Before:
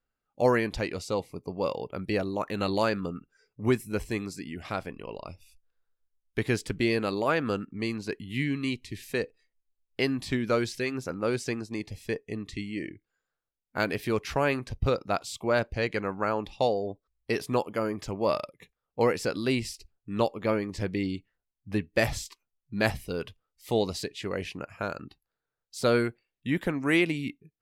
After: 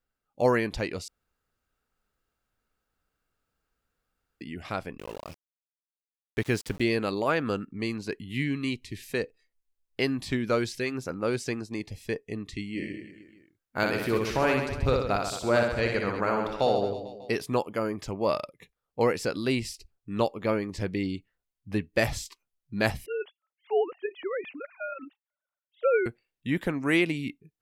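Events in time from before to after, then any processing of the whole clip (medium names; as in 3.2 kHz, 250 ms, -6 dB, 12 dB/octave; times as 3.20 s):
1.08–4.41 s: room tone
4.98–6.82 s: small samples zeroed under -41.5 dBFS
12.69–17.34 s: reverse bouncing-ball echo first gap 60 ms, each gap 1.2×, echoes 6
23.06–26.06 s: formants replaced by sine waves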